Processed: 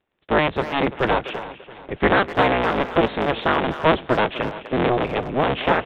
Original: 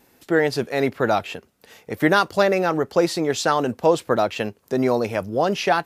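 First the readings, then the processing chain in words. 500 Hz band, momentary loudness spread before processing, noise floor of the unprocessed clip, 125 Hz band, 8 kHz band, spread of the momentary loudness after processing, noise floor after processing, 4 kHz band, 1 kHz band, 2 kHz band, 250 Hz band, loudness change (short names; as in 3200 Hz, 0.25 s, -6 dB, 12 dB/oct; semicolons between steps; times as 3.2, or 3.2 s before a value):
-1.0 dB, 6 LU, -60 dBFS, +2.0 dB, under -20 dB, 8 LU, -49 dBFS, +1.0 dB, +2.0 dB, +2.5 dB, -0.5 dB, +0.5 dB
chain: cycle switcher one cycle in 3, inverted; gate -47 dBFS, range -19 dB; crackle 17/s -45 dBFS; on a send: feedback echo 0.337 s, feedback 46%, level -16.5 dB; on the sum: downsampling 8000 Hz; speakerphone echo 0.25 s, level -12 dB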